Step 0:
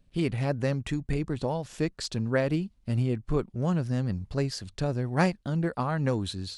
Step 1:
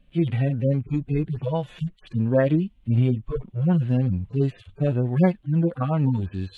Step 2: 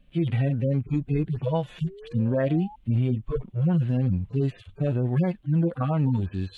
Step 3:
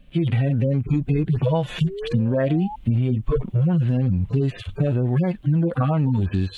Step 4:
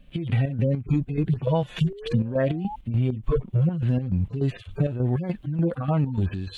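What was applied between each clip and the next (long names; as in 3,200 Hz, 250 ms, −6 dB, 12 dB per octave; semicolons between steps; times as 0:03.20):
harmonic-percussive split with one part muted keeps harmonic; high shelf with overshoot 4,000 Hz −8 dB, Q 3; level +7 dB
brickwall limiter −15.5 dBFS, peak gain reduction 9 dB; sound drawn into the spectrogram rise, 0:01.84–0:02.76, 360–880 Hz −44 dBFS
automatic gain control gain up to 6.5 dB; in parallel at +3 dB: brickwall limiter −18.5 dBFS, peak gain reduction 9.5 dB; on the sum: downward compressor, threshold −17 dBFS, peak gain reduction 8 dB
square-wave tremolo 3.4 Hz, depth 60%, duty 55%; level −1.5 dB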